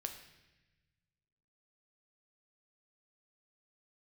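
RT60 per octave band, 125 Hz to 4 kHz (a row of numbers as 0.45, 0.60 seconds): 2.1, 1.8, 1.1, 1.0, 1.3, 1.1 seconds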